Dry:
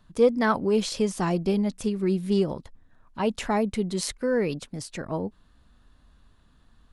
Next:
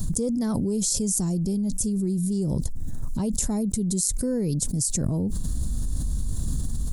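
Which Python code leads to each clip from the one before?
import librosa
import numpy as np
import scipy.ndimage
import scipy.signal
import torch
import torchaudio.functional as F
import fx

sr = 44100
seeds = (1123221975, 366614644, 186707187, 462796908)

y = fx.curve_eq(x, sr, hz=(140.0, 1400.0, 2700.0, 7200.0), db=(0, -26, -26, 6))
y = fx.env_flatten(y, sr, amount_pct=100)
y = F.gain(torch.from_numpy(y), 1.5).numpy()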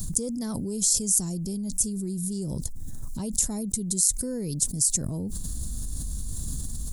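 y = fx.high_shelf(x, sr, hz=3600.0, db=11.0)
y = F.gain(torch.from_numpy(y), -6.0).numpy()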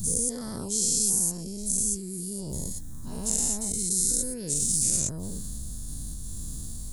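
y = fx.spec_dilate(x, sr, span_ms=240)
y = F.gain(torch.from_numpy(y), -8.5).numpy()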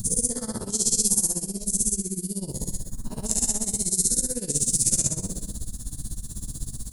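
y = fx.rev_gated(x, sr, seeds[0], gate_ms=440, shape='falling', drr_db=3.0)
y = y * (1.0 - 0.87 / 2.0 + 0.87 / 2.0 * np.cos(2.0 * np.pi * 16.0 * (np.arange(len(y)) / sr)))
y = F.gain(torch.from_numpy(y), 4.5).numpy()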